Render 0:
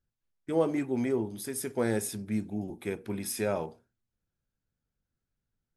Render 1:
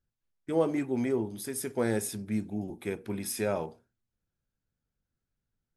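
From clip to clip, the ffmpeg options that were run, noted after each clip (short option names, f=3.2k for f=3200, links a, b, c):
-af anull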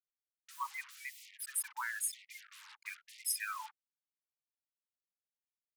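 -af "afftfilt=real='re*gte(hypot(re,im),0.0224)':imag='im*gte(hypot(re,im),0.0224)':win_size=1024:overlap=0.75,acrusher=bits=7:mix=0:aa=0.5,afftfilt=real='re*gte(b*sr/1024,810*pow(1900/810,0.5+0.5*sin(2*PI*1*pts/sr)))':imag='im*gte(b*sr/1024,810*pow(1900/810,0.5+0.5*sin(2*PI*1*pts/sr)))':win_size=1024:overlap=0.75,volume=2.5dB"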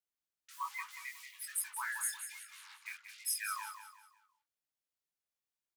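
-filter_complex "[0:a]flanger=delay=18.5:depth=6.8:speed=1.2,asplit=2[a][b];[b]aecho=0:1:182|364|546|728:0.355|0.131|0.0486|0.018[c];[a][c]amix=inputs=2:normalize=0,volume=3dB"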